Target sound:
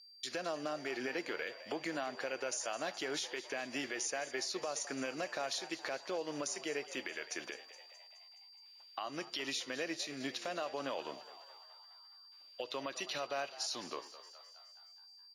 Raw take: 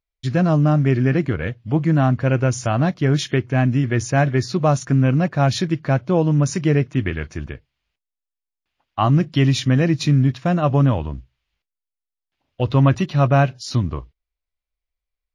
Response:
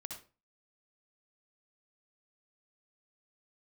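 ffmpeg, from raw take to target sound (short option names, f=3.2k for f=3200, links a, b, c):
-filter_complex "[0:a]highpass=f=480:w=0.5412,highpass=f=480:w=1.3066,equalizer=f=920:w=0.36:g=-15,acompressor=threshold=-45dB:ratio=6,alimiter=level_in=16.5dB:limit=-24dB:level=0:latency=1:release=117,volume=-16.5dB,aeval=exprs='val(0)+0.000398*sin(2*PI*4700*n/s)':c=same,asplit=8[a][b][c][d][e][f][g][h];[b]adelay=210,afreqshift=89,volume=-15dB[i];[c]adelay=420,afreqshift=178,volume=-19.2dB[j];[d]adelay=630,afreqshift=267,volume=-23.3dB[k];[e]adelay=840,afreqshift=356,volume=-27.5dB[l];[f]adelay=1050,afreqshift=445,volume=-31.6dB[m];[g]adelay=1260,afreqshift=534,volume=-35.8dB[n];[h]adelay=1470,afreqshift=623,volume=-39.9dB[o];[a][i][j][k][l][m][n][o]amix=inputs=8:normalize=0,asplit=2[p][q];[1:a]atrim=start_sample=2205[r];[q][r]afir=irnorm=-1:irlink=0,volume=-14dB[s];[p][s]amix=inputs=2:normalize=0,volume=11.5dB"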